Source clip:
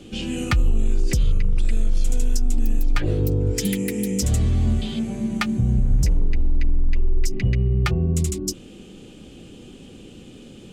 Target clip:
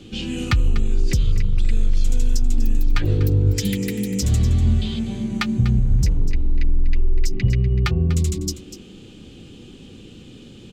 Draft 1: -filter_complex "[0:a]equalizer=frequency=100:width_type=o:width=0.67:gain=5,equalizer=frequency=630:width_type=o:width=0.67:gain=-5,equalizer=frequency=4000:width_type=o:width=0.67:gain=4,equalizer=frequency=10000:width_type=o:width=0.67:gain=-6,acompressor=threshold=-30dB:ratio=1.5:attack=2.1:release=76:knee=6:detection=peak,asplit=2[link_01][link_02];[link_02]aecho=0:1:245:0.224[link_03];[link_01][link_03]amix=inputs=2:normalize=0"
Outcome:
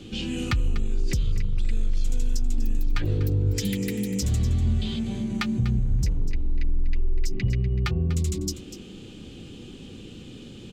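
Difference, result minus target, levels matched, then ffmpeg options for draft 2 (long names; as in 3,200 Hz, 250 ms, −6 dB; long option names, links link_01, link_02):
downward compressor: peak gain reduction +7 dB
-filter_complex "[0:a]equalizer=frequency=100:width_type=o:width=0.67:gain=5,equalizer=frequency=630:width_type=o:width=0.67:gain=-5,equalizer=frequency=4000:width_type=o:width=0.67:gain=4,equalizer=frequency=10000:width_type=o:width=0.67:gain=-6,asplit=2[link_01][link_02];[link_02]aecho=0:1:245:0.224[link_03];[link_01][link_03]amix=inputs=2:normalize=0"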